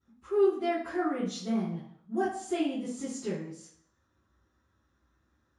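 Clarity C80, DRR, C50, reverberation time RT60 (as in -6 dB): 7.5 dB, -19.5 dB, 2.5 dB, 0.60 s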